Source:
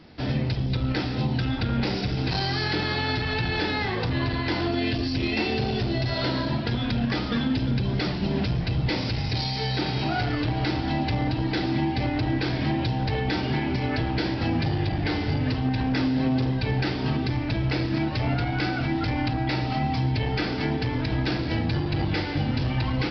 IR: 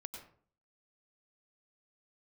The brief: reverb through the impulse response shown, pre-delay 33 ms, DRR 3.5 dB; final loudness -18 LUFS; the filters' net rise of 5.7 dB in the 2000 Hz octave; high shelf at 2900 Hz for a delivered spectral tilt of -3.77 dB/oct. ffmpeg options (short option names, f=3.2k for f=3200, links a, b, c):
-filter_complex "[0:a]equalizer=f=2k:t=o:g=4,highshelf=f=2.9k:g=7.5,asplit=2[a][b];[1:a]atrim=start_sample=2205,adelay=33[c];[b][c]afir=irnorm=-1:irlink=0,volume=0dB[d];[a][d]amix=inputs=2:normalize=0,volume=4.5dB"